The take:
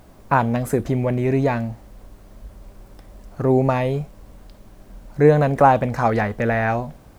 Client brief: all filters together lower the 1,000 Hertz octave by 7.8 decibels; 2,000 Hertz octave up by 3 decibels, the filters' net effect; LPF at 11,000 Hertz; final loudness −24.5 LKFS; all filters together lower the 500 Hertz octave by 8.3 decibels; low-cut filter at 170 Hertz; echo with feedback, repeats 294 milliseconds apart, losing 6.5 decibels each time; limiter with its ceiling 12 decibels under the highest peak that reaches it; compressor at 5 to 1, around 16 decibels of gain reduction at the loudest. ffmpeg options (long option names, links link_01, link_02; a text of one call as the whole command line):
ffmpeg -i in.wav -af "highpass=170,lowpass=11000,equalizer=frequency=500:width_type=o:gain=-8.5,equalizer=frequency=1000:width_type=o:gain=-8.5,equalizer=frequency=2000:width_type=o:gain=7.5,acompressor=threshold=-33dB:ratio=5,alimiter=level_in=5dB:limit=-24dB:level=0:latency=1,volume=-5dB,aecho=1:1:294|588|882|1176|1470|1764:0.473|0.222|0.105|0.0491|0.0231|0.0109,volume=15.5dB" out.wav